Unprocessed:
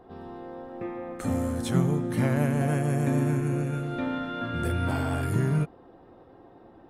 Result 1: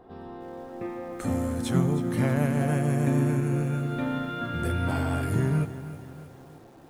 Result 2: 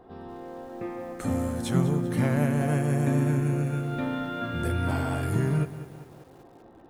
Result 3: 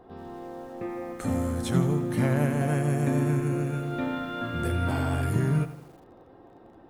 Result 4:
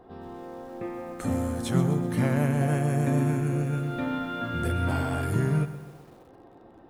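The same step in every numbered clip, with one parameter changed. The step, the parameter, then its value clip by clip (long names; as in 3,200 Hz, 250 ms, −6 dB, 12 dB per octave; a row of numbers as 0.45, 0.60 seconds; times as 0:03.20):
feedback echo at a low word length, delay time: 316, 196, 83, 127 milliseconds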